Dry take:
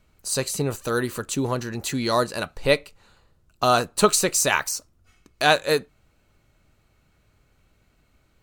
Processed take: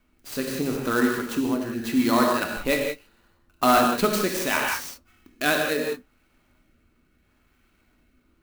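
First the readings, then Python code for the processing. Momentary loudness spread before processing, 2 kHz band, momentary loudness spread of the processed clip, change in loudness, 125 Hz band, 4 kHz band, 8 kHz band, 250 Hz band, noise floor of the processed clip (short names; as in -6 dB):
9 LU, 0.0 dB, 11 LU, -1.0 dB, -6.0 dB, -4.0 dB, -8.0 dB, +5.0 dB, -66 dBFS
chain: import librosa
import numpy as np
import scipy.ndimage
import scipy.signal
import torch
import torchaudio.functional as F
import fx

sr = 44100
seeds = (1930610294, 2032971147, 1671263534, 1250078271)

y = fx.low_shelf(x, sr, hz=340.0, db=-5.5)
y = fx.rev_gated(y, sr, seeds[0], gate_ms=210, shape='flat', drr_db=0.5)
y = fx.rotary(y, sr, hz=0.75)
y = np.clip(y, -10.0 ** (-12.5 / 20.0), 10.0 ** (-12.5 / 20.0))
y = fx.graphic_eq(y, sr, hz=(125, 250, 500, 4000, 8000), db=(-11, 9, -7, -3, -9))
y = fx.clock_jitter(y, sr, seeds[1], jitter_ms=0.028)
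y = y * librosa.db_to_amplitude(3.0)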